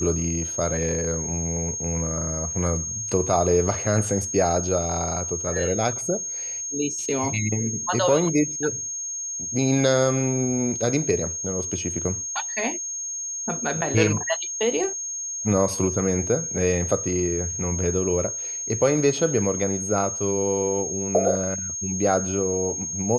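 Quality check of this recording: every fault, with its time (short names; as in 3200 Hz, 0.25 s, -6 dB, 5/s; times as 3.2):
tone 6500 Hz -28 dBFS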